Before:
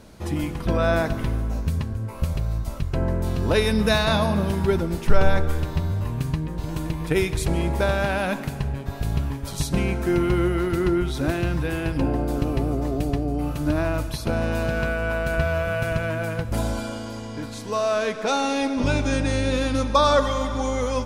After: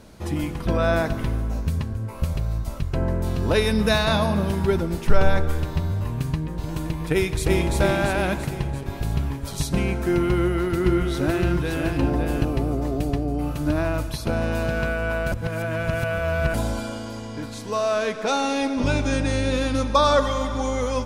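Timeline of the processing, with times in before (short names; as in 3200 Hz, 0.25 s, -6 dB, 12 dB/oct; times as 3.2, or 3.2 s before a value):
7.12–7.76 echo throw 0.34 s, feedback 55%, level -2 dB
10.28–12.45 echo 0.562 s -5 dB
15.32–16.54 reverse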